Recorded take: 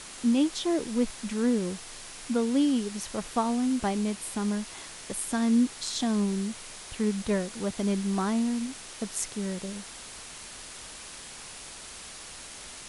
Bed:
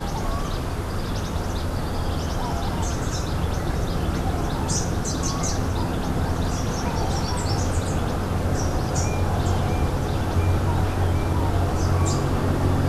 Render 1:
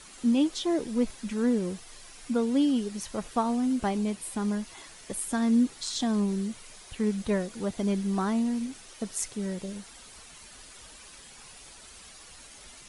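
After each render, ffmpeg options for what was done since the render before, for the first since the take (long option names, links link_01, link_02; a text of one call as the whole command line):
ffmpeg -i in.wav -af "afftdn=noise_reduction=9:noise_floor=-44" out.wav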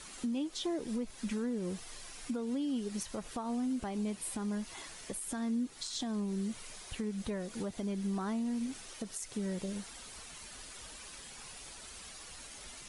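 ffmpeg -i in.wav -af "acompressor=threshold=-32dB:ratio=5,alimiter=level_in=3.5dB:limit=-24dB:level=0:latency=1:release=166,volume=-3.5dB" out.wav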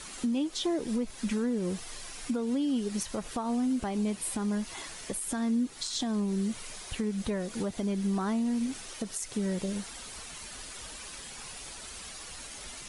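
ffmpeg -i in.wav -af "volume=5.5dB" out.wav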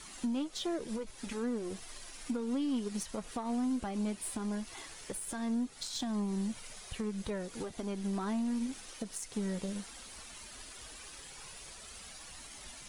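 ffmpeg -i in.wav -af "aeval=exprs='0.0841*(cos(1*acos(clip(val(0)/0.0841,-1,1)))-cos(1*PI/2))+0.00473*(cos(3*acos(clip(val(0)/0.0841,-1,1)))-cos(3*PI/2))+0.00299*(cos(6*acos(clip(val(0)/0.0841,-1,1)))-cos(6*PI/2))':channel_layout=same,flanger=delay=0.9:depth=3.5:regen=-64:speed=0.16:shape=triangular" out.wav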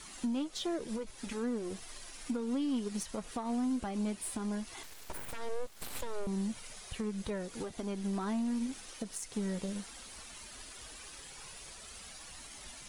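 ffmpeg -i in.wav -filter_complex "[0:a]asettb=1/sr,asplit=3[link_01][link_02][link_03];[link_01]atrim=end=4.834[link_04];[link_02]atrim=start=4.83:end=6.27,asetpts=PTS-STARTPTS,afade=type=in:duration=0.004:curve=qsin,afade=type=out:start_time=1.436:duration=0.004:curve=qsin,aeval=exprs='abs(val(0))':channel_layout=same[link_05];[link_03]atrim=start=6.266[link_06];[link_04][link_05]acrossfade=duration=0.004:curve1=hsin:curve2=qsin[link_07];[link_07][link_06]acrossfade=duration=0.004:curve1=qsin:curve2=hsin" out.wav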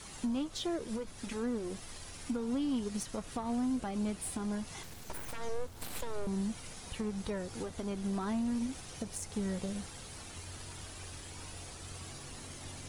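ffmpeg -i in.wav -i bed.wav -filter_complex "[1:a]volume=-28dB[link_01];[0:a][link_01]amix=inputs=2:normalize=0" out.wav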